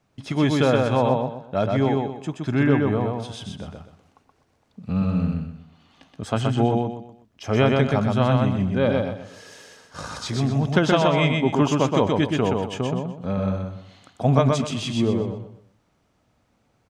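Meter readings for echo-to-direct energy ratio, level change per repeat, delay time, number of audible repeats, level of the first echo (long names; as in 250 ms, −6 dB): −2.5 dB, −10.0 dB, 125 ms, 4, −3.0 dB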